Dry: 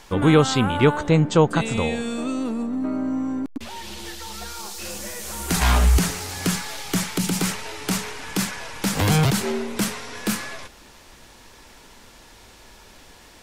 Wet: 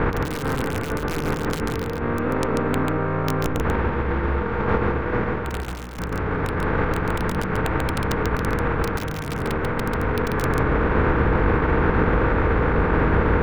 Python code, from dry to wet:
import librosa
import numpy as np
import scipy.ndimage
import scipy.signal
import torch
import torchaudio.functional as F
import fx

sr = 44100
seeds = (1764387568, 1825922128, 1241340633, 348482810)

y = fx.bin_compress(x, sr, power=0.2)
y = fx.ladder_lowpass(y, sr, hz=2000.0, resonance_pct=45)
y = fx.peak_eq(y, sr, hz=180.0, db=-3.0, octaves=1.9)
y = (np.mod(10.0 ** (11.0 / 20.0) * y + 1.0, 2.0) - 1.0) / 10.0 ** (11.0 / 20.0)
y = fx.low_shelf(y, sr, hz=240.0, db=9.0)
y = fx.over_compress(y, sr, threshold_db=-21.0, ratio=-0.5)
y = y + 10.0 ** (-3.5 / 20.0) * np.pad(y, (int(140 * sr / 1000.0), 0))[:len(y)]
y = y * 10.0 ** (-1.5 / 20.0)